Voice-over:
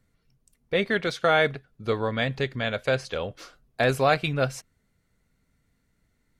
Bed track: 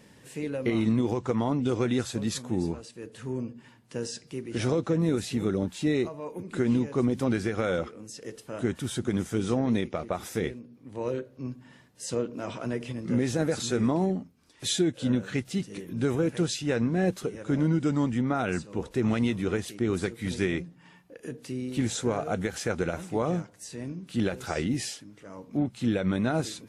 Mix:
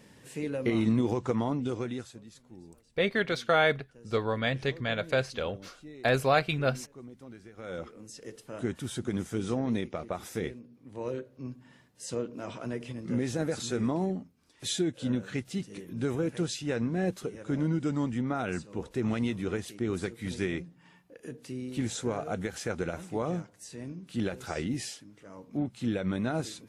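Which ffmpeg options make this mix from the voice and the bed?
-filter_complex "[0:a]adelay=2250,volume=0.708[s0];[1:a]volume=6.68,afade=t=out:st=1.26:d=0.98:silence=0.0944061,afade=t=in:st=7.55:d=0.46:silence=0.133352[s1];[s0][s1]amix=inputs=2:normalize=0"

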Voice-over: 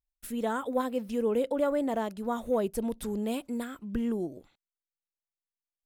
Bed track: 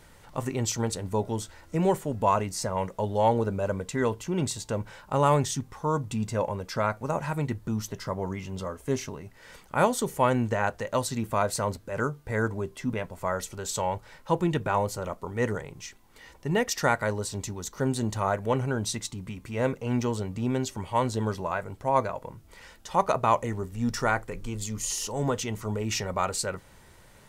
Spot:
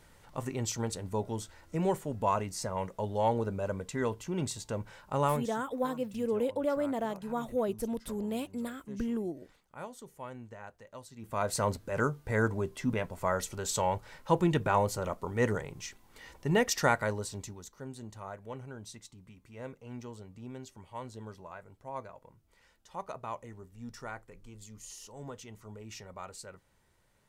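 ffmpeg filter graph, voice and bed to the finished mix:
-filter_complex "[0:a]adelay=5050,volume=0.708[s0];[1:a]volume=5.01,afade=t=out:st=5.24:d=0.27:silence=0.177828,afade=t=in:st=11.17:d=0.47:silence=0.105925,afade=t=out:st=16.72:d=1.07:silence=0.16788[s1];[s0][s1]amix=inputs=2:normalize=0"

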